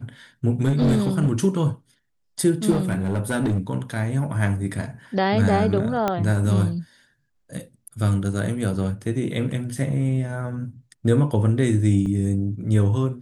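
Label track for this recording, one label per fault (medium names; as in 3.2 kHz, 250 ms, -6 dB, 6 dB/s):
0.640000	1.320000	clipped -14.5 dBFS
2.700000	3.590000	clipped -17.5 dBFS
6.080000	6.080000	pop -9 dBFS
12.060000	12.060000	dropout 3.1 ms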